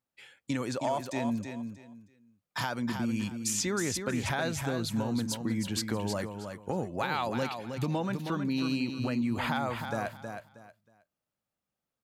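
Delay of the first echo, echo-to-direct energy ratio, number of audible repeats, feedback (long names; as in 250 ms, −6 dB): 317 ms, −6.5 dB, 3, 24%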